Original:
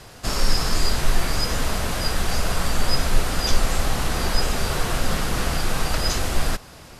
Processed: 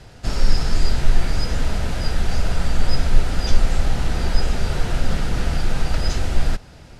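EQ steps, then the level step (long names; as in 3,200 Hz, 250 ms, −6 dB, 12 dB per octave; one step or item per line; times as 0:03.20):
high-frequency loss of the air 51 metres
low-shelf EQ 200 Hz +8 dB
notch filter 1,100 Hz, Q 7
−3.0 dB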